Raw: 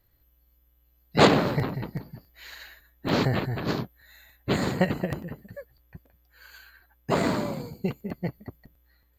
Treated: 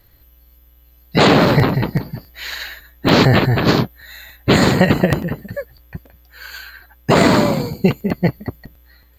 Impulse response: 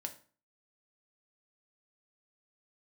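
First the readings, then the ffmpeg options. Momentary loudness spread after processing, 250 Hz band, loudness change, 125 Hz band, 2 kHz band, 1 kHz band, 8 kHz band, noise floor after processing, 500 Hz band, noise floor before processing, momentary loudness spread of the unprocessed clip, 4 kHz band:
20 LU, +12.0 dB, +11.0 dB, +12.5 dB, +12.0 dB, +10.0 dB, +11.5 dB, -51 dBFS, +10.5 dB, -66 dBFS, 24 LU, +12.0 dB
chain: -filter_complex "[0:a]acrossover=split=4300[s0][s1];[s0]crystalizer=i=2:c=0[s2];[s2][s1]amix=inputs=2:normalize=0,alimiter=level_in=5.96:limit=0.891:release=50:level=0:latency=1,volume=0.891"

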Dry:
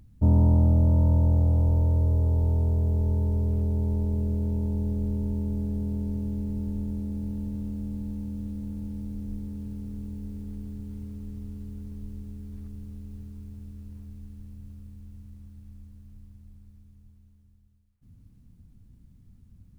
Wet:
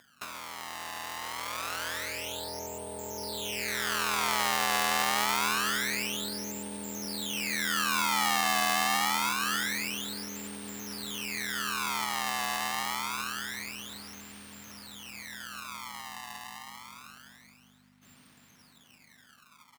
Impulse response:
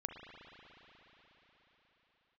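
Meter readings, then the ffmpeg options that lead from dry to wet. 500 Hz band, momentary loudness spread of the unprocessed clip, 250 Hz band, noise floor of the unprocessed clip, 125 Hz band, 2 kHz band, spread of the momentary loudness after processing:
-1.5 dB, 22 LU, -10.5 dB, -57 dBFS, -26.0 dB, no reading, 16 LU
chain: -af "acrusher=samples=26:mix=1:aa=0.000001:lfo=1:lforange=41.6:lforate=0.26,aeval=exprs='val(0)+0.00316*(sin(2*PI*50*n/s)+sin(2*PI*2*50*n/s)/2+sin(2*PI*3*50*n/s)/3+sin(2*PI*4*50*n/s)/4+sin(2*PI*5*50*n/s)/5)':c=same,acompressor=threshold=0.0224:ratio=10,aecho=1:1:527:0.075,dynaudnorm=f=170:g=21:m=4.73,highpass=850,volume=2.51"

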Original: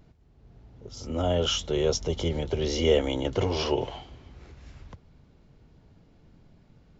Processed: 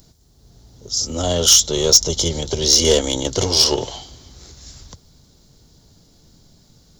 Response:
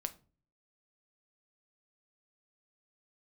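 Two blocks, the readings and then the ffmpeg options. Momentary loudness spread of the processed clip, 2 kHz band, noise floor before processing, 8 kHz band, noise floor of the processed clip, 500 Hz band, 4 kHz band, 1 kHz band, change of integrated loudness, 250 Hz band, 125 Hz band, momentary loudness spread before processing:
11 LU, +5.0 dB, -59 dBFS, no reading, -54 dBFS, +5.0 dB, +15.5 dB, +5.0 dB, +12.0 dB, +5.0 dB, +4.5 dB, 13 LU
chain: -af "aeval=exprs='0.335*(cos(1*acos(clip(val(0)/0.335,-1,1)))-cos(1*PI/2))+0.0211*(cos(4*acos(clip(val(0)/0.335,-1,1)))-cos(4*PI/2))+0.0133*(cos(7*acos(clip(val(0)/0.335,-1,1)))-cos(7*PI/2))':c=same,aexciter=amount=10.5:drive=5.3:freq=3800,asoftclip=type=tanh:threshold=0.335,volume=2.11"

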